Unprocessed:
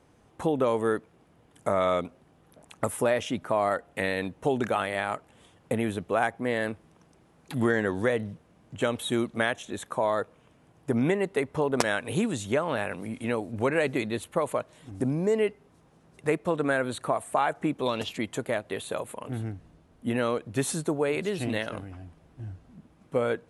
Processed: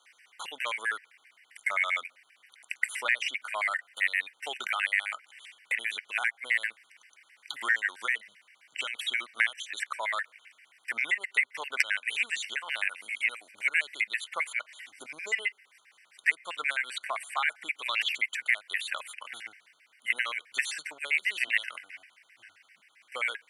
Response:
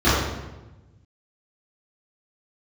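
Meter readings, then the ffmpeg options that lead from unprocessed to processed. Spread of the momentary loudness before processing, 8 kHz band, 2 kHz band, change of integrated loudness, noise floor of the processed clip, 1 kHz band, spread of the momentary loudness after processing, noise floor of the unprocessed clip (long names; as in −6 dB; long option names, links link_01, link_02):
10 LU, −3.0 dB, +6.5 dB, −1.5 dB, −67 dBFS, −7.0 dB, 14 LU, −61 dBFS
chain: -filter_complex "[0:a]highpass=frequency=2100:width_type=q:width=5.1,acrossover=split=3400|7000[link_01][link_02][link_03];[link_01]acompressor=threshold=-32dB:ratio=4[link_04];[link_02]acompressor=threshold=-47dB:ratio=4[link_05];[link_03]acompressor=threshold=-57dB:ratio=4[link_06];[link_04][link_05][link_06]amix=inputs=3:normalize=0,afftfilt=real='re*gt(sin(2*PI*7.6*pts/sr)*(1-2*mod(floor(b*sr/1024/1500),2)),0)':imag='im*gt(sin(2*PI*7.6*pts/sr)*(1-2*mod(floor(b*sr/1024/1500),2)),0)':win_size=1024:overlap=0.75,volume=8.5dB"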